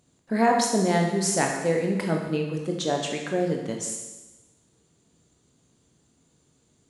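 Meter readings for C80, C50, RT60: 6.0 dB, 4.0 dB, 1.1 s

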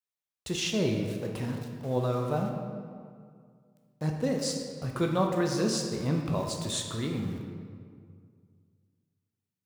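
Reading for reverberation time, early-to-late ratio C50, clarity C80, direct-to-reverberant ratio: 2.1 s, 3.5 dB, 5.0 dB, 1.0 dB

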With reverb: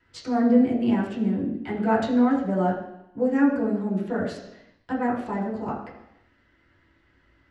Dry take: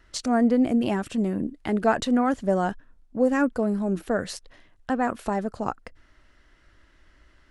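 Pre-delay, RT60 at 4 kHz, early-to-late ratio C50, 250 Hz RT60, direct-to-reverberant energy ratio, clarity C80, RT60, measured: 3 ms, 0.90 s, 5.0 dB, 0.85 s, -7.0 dB, 7.0 dB, 0.85 s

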